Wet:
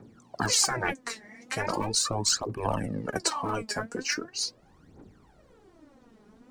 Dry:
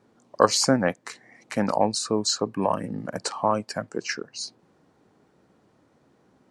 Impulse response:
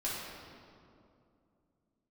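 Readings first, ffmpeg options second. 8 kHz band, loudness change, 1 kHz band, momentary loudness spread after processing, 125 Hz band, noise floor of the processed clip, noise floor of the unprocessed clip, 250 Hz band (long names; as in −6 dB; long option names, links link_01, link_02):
+2.0 dB, −3.0 dB, −5.5 dB, 10 LU, −1.5 dB, −59 dBFS, −63 dBFS, −8.0 dB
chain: -filter_complex "[0:a]asubboost=boost=5:cutoff=57,acrossover=split=370|780[link_01][link_02][link_03];[link_01]acontrast=27[link_04];[link_04][link_02][link_03]amix=inputs=3:normalize=0,aphaser=in_gain=1:out_gain=1:delay=4.9:decay=0.73:speed=0.4:type=triangular,afftfilt=real='re*lt(hypot(re,im),0.316)':imag='im*lt(hypot(re,im),0.316)':win_size=1024:overlap=0.75"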